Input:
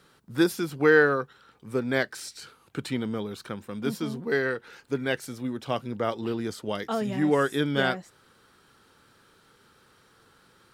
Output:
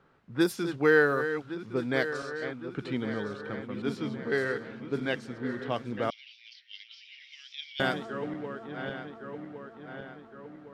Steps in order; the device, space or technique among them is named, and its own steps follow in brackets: regenerating reverse delay 0.556 s, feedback 72%, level -10 dB; cassette deck with a dynamic noise filter (white noise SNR 31 dB; low-pass opened by the level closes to 1500 Hz, open at -18.5 dBFS); 6.1–7.8 Chebyshev band-pass 2200–5700 Hz, order 4; gain -3 dB

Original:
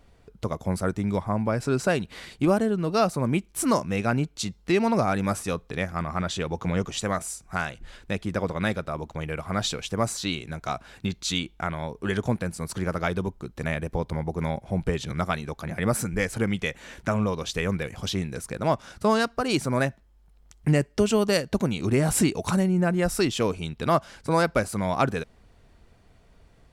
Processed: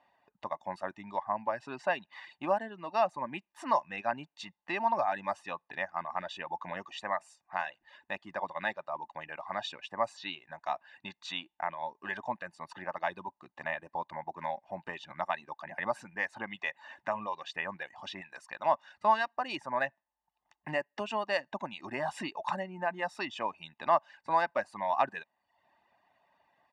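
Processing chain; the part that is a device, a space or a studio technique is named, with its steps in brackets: tin-can telephone (BPF 560–2400 Hz; small resonant body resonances 570/880/2400 Hz, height 6 dB); reverb removal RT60 0.63 s; comb 1.1 ms, depth 79%; 18.21–18.66 tilt shelf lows -6 dB, about 1200 Hz; gain -4.5 dB

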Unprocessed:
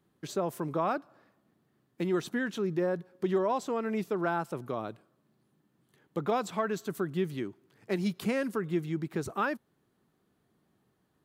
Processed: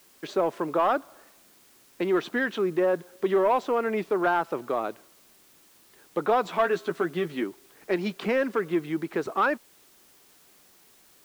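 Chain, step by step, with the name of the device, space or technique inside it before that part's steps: tape answering machine (BPF 340–3100 Hz; soft clip -23 dBFS, distortion -19 dB; wow and flutter; white noise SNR 30 dB); 6.44–7.44 doubler 12 ms -6 dB; gain +9 dB

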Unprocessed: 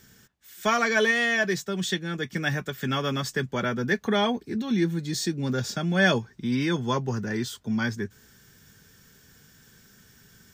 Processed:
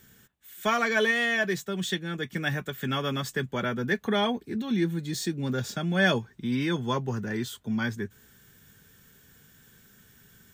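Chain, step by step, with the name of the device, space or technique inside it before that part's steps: exciter from parts (in parallel at -4 dB: HPF 3500 Hz 24 dB/oct + soft clip -31 dBFS, distortion -13 dB + HPF 4000 Hz 12 dB/oct); on the sum: gain -2 dB

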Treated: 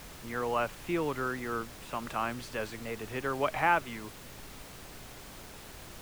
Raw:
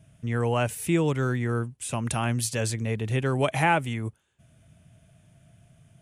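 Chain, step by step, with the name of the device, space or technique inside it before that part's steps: horn gramophone (BPF 260–3200 Hz; bell 1200 Hz +7.5 dB; wow and flutter; pink noise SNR 12 dB); gain -6 dB

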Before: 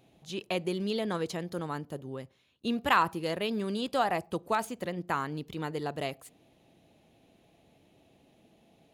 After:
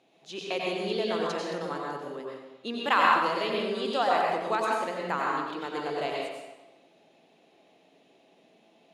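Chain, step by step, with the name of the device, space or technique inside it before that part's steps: supermarket ceiling speaker (BPF 320–6800 Hz; reverb RT60 1.1 s, pre-delay 85 ms, DRR -3 dB)

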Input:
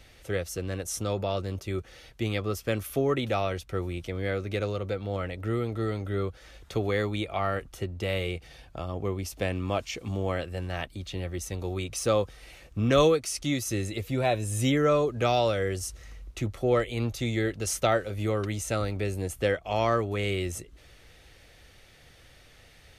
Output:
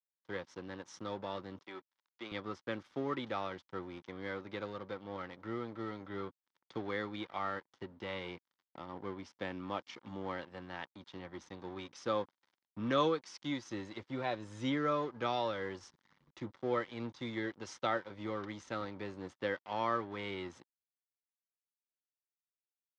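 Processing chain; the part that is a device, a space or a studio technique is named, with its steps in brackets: blown loudspeaker (crossover distortion -41.5 dBFS; speaker cabinet 220–4600 Hz, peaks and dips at 430 Hz -7 dB, 660 Hz -9 dB, 940 Hz +5 dB, 2600 Hz -9 dB, 4200 Hz -4 dB); 1.64–2.32 weighting filter A; gain -5 dB

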